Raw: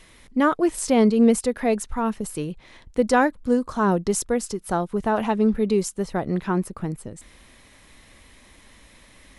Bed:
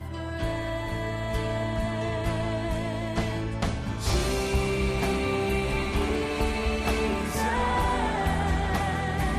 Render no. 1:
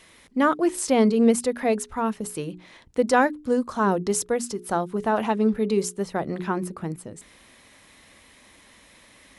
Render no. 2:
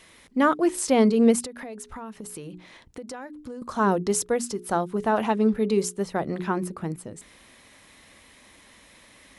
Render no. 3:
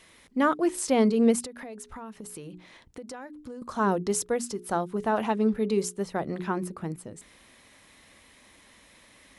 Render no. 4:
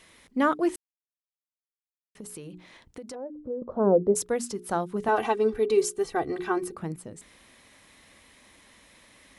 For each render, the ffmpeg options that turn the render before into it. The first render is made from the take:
-af "highpass=f=150:p=1,bandreject=f=60:t=h:w=6,bandreject=f=120:t=h:w=6,bandreject=f=180:t=h:w=6,bandreject=f=240:t=h:w=6,bandreject=f=300:t=h:w=6,bandreject=f=360:t=h:w=6,bandreject=f=420:t=h:w=6"
-filter_complex "[0:a]asettb=1/sr,asplit=3[a][b][c];[a]atrim=end=1.454[d];[b]atrim=start=1.45:end=3.62,asetpts=PTS-STARTPTS,afade=t=in:d=0.004:c=qsin,afade=t=out:st=2.166:d=0.004:c=qsin,acompressor=threshold=-34dB:ratio=10:attack=3.2:release=140:knee=1:detection=peak[e];[c]atrim=start=3.616[f];[d][e]acrossfade=d=0.004:c1=hsin:c2=qsin[g];[g][f]acrossfade=d=0.004:c1=qsin:c2=hsin"
-af "volume=-3dB"
-filter_complex "[0:a]asplit=3[a][b][c];[a]afade=t=out:st=3.14:d=0.02[d];[b]lowpass=f=540:t=q:w=3.7,afade=t=in:st=3.14:d=0.02,afade=t=out:st=4.15:d=0.02[e];[c]afade=t=in:st=4.15:d=0.02[f];[d][e][f]amix=inputs=3:normalize=0,asettb=1/sr,asplit=3[g][h][i];[g]atrim=end=5.084[j];[h]atrim=start=5.08:end=6.75,asetpts=PTS-STARTPTS,afade=t=in:d=0.004:c=qsin,afade=t=out:st=1.666:d=0.004:c=qsin,aecho=1:1:2.6:0.91,atrim=end_sample=73647[k];[i]atrim=start=6.746[l];[j][k]acrossfade=d=0.004:c1=hsin:c2=qsin[m];[m][l]acrossfade=d=0.004:c1=qsin:c2=hsin,asplit=3[n][o][p];[n]atrim=end=0.76,asetpts=PTS-STARTPTS,afade=t=out:st=0.756:d=0.004:c=hsin[q];[o]atrim=start=0.76:end=2.15,asetpts=PTS-STARTPTS,volume=0[r];[p]atrim=start=2.15,asetpts=PTS-STARTPTS,afade=t=in:d=0.004:c=hsin[s];[q][r][s]concat=n=3:v=0:a=1"

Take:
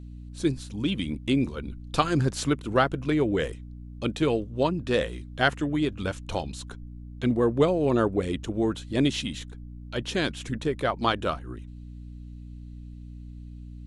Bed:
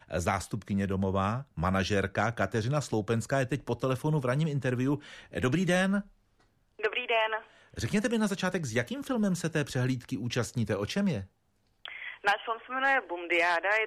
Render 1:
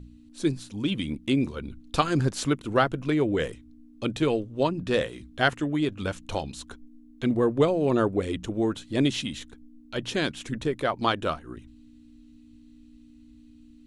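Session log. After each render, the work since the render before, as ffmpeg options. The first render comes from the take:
-af "bandreject=f=60:t=h:w=4,bandreject=f=120:t=h:w=4,bandreject=f=180:t=h:w=4"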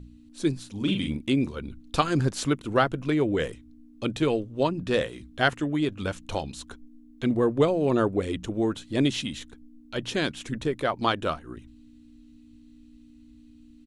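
-filter_complex "[0:a]asplit=3[a][b][c];[a]afade=t=out:st=0.75:d=0.02[d];[b]asplit=2[e][f];[f]adelay=41,volume=-4dB[g];[e][g]amix=inputs=2:normalize=0,afade=t=in:st=0.75:d=0.02,afade=t=out:st=1.23:d=0.02[h];[c]afade=t=in:st=1.23:d=0.02[i];[d][h][i]amix=inputs=3:normalize=0"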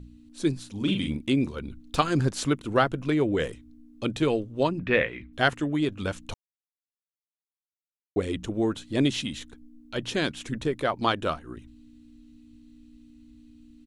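-filter_complex "[0:a]asettb=1/sr,asplit=3[a][b][c];[a]atrim=end=1.534[d];[b]atrim=start=1.53:end=1.99,asetpts=PTS-STARTPTS,afade=t=in:d=0.004:c=qsin,afade=t=out:st=0.456:d=0.004:c=qsin,asoftclip=type=hard:threshold=-24.5dB[e];[c]atrim=start=1.986[f];[d][e]acrossfade=d=0.004:c1=hsin:c2=qsin[g];[g][f]acrossfade=d=0.004:c1=qsin:c2=hsin,asettb=1/sr,asplit=3[h][i][j];[h]atrim=end=4.794[k];[i]atrim=start=4.79:end=5.33,asetpts=PTS-STARTPTS,afade=t=in:d=0.004:c=qsin,afade=t=out:st=0.536:d=0.004:c=qsin,lowpass=f=2.2k:t=q:w=4.4[l];[j]atrim=start=5.326[m];[k][l]acrossfade=d=0.004:c1=hsin:c2=qsin[n];[n][m]acrossfade=d=0.004:c1=qsin:c2=hsin,asplit=3[o][p][q];[o]atrim=end=6.34,asetpts=PTS-STARTPTS,afade=t=out:st=6.336:d=0.004:c=hsin[r];[p]atrim=start=6.34:end=8.16,asetpts=PTS-STARTPTS,volume=0[s];[q]atrim=start=8.16,asetpts=PTS-STARTPTS,afade=t=in:d=0.004:c=hsin[t];[r][s][t]concat=n=3:v=0:a=1"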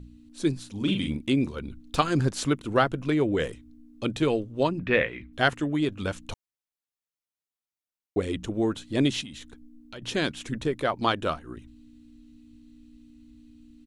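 -filter_complex "[0:a]asettb=1/sr,asplit=3[a][b][c];[a]atrim=end=9.214[d];[b]atrim=start=9.21:end=10.02,asetpts=PTS-STARTPTS,afade=t=in:d=0.004:c=qsin,afade=t=out:st=0.806:d=0.004:c=qsin,acompressor=threshold=-38dB:ratio=5:attack=3.2:release=140:knee=1:detection=peak[e];[c]atrim=start=10.016[f];[d][e]acrossfade=d=0.004:c1=hsin:c2=qsin[g];[g][f]acrossfade=d=0.004:c1=qsin:c2=hsin"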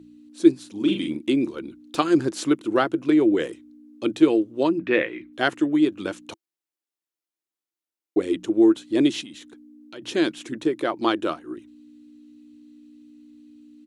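-af "highpass=220,equalizer=f=330:w=4.6:g=14"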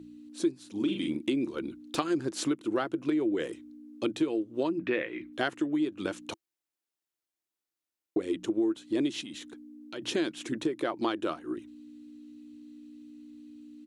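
-af "acompressor=threshold=-27dB:ratio=4"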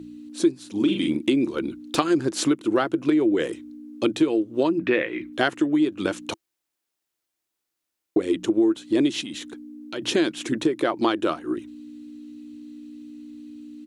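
-af "volume=8dB"

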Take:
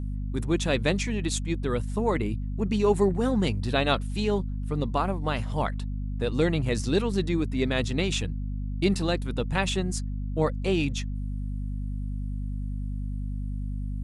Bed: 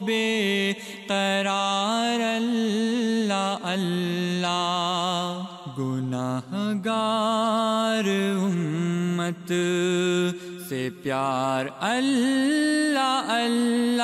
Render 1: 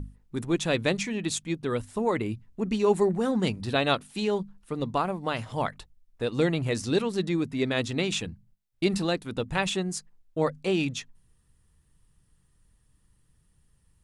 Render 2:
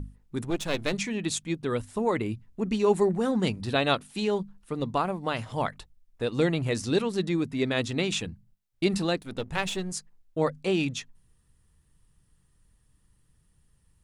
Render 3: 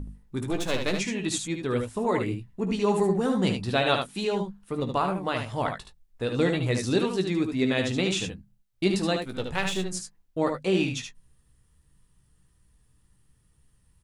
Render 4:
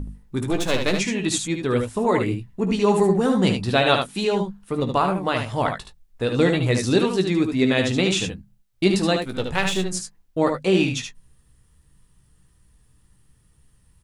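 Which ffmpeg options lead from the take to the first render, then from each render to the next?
-af "bandreject=f=50:t=h:w=6,bandreject=f=100:t=h:w=6,bandreject=f=150:t=h:w=6,bandreject=f=200:t=h:w=6,bandreject=f=250:t=h:w=6"
-filter_complex "[0:a]asettb=1/sr,asplit=3[a][b][c];[a]atrim=end=0.504[d];[b]atrim=start=0.5:end=0.93,asetpts=PTS-STARTPTS,afade=t=in:d=0.004:c=qsin,afade=t=out:st=0.426:d=0.004:c=qsin,aeval=exprs='if(lt(val(0),0),0.251*val(0),val(0))':c=same[e];[c]atrim=start=0.926[f];[d][e]acrossfade=d=0.004:c1=hsin:c2=qsin[g];[g][f]acrossfade=d=0.004:c1=qsin:c2=hsin,asettb=1/sr,asplit=3[h][i][j];[h]atrim=end=9.214[k];[i]atrim=start=9.21:end=9.92,asetpts=PTS-STARTPTS,afade=t=in:d=0.004:c=qsin,afade=t=out:st=0.706:d=0.004:c=qsin,aeval=exprs='if(lt(val(0),0),0.447*val(0),val(0))':c=same[l];[j]atrim=start=9.916[m];[k][l]acrossfade=d=0.004:c1=hsin:c2=qsin[n];[n][m]acrossfade=d=0.004:c1=qsin:c2=hsin"
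-filter_complex "[0:a]asplit=2[a][b];[b]adelay=16,volume=-9dB[c];[a][c]amix=inputs=2:normalize=0,aecho=1:1:54|74:0.158|0.501"
-af "volume=5.5dB"

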